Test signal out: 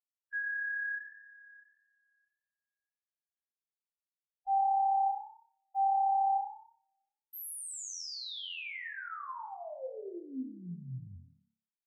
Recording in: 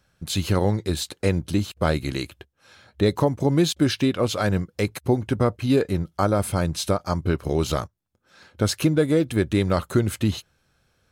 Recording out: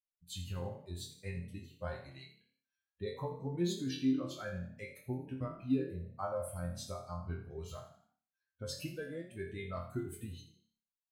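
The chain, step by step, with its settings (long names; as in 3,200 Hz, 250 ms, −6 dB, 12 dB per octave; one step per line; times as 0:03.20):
spectral dynamics exaggerated over time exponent 2
resonators tuned to a chord F2 fifth, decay 0.41 s
echo with shifted repeats 82 ms, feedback 41%, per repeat +34 Hz, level −13 dB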